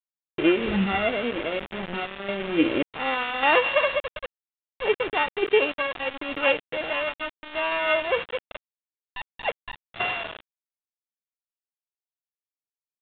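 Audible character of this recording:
a buzz of ramps at a fixed pitch in blocks of 16 samples
sample-and-hold tremolo, depth 80%
a quantiser's noise floor 6 bits, dither none
mu-law

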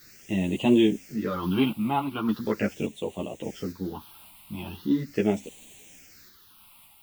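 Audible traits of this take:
a quantiser's noise floor 8 bits, dither triangular
phaser sweep stages 6, 0.4 Hz, lowest notch 440–1,400 Hz
sample-and-hold tremolo
a shimmering, thickened sound

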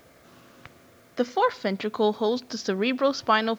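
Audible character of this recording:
a quantiser's noise floor 10 bits, dither triangular

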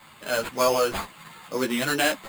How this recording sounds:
aliases and images of a low sample rate 5,700 Hz, jitter 0%
a shimmering, thickened sound

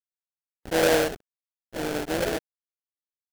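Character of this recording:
a quantiser's noise floor 6 bits, dither none
phaser sweep stages 4, 1.4 Hz, lowest notch 640–1,300 Hz
aliases and images of a low sample rate 1,100 Hz, jitter 20%
AAC

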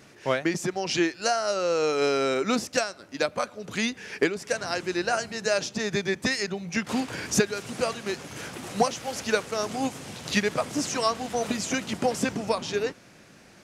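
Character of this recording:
background noise floor −52 dBFS
spectral slope −3.5 dB per octave

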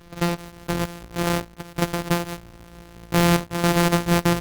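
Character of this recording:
a buzz of ramps at a fixed pitch in blocks of 256 samples
chopped level 0.55 Hz, depth 60%, duty 85%
Opus

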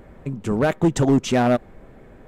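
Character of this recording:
background noise floor −47 dBFS
spectral slope −6.5 dB per octave

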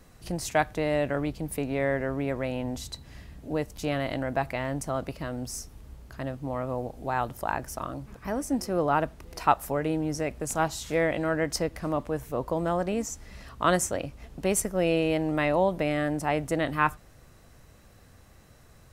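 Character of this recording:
background noise floor −54 dBFS
spectral slope −5.0 dB per octave

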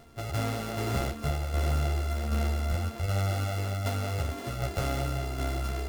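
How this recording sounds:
a buzz of ramps at a fixed pitch in blocks of 64 samples
tremolo saw down 1.3 Hz, depth 45%
a shimmering, thickened sound

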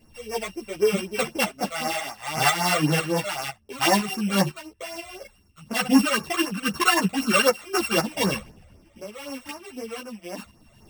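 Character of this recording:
a buzz of ramps at a fixed pitch in blocks of 16 samples
phaser sweep stages 12, 3.9 Hz, lowest notch 270–3,600 Hz
tremolo saw up 2 Hz, depth 55%
a shimmering, thickened sound

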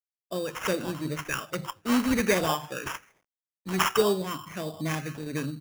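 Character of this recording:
phaser sweep stages 6, 1.3 Hz, lowest notch 770–1,600 Hz
a quantiser's noise floor 12 bits, dither none
tremolo saw down 1.9 Hz, depth 35%
aliases and images of a low sample rate 4,200 Hz, jitter 0%

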